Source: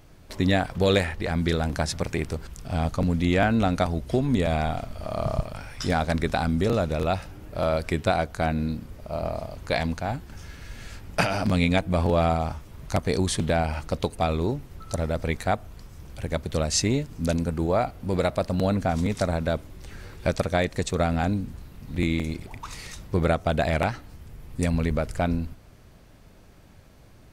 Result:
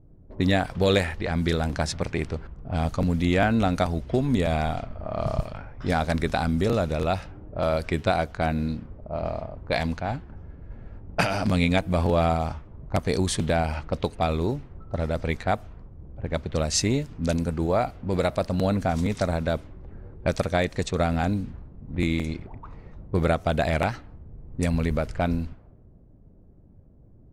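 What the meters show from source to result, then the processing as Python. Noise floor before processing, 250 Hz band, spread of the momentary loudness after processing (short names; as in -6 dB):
-51 dBFS, 0.0 dB, 13 LU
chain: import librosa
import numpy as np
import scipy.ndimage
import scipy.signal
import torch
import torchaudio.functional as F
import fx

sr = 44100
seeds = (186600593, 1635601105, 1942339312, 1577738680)

y = fx.env_lowpass(x, sr, base_hz=330.0, full_db=-21.0)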